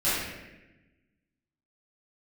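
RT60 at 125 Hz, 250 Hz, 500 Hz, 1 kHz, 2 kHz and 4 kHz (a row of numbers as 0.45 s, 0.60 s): 1.6 s, 1.6 s, 1.2 s, 0.90 s, 1.2 s, 0.80 s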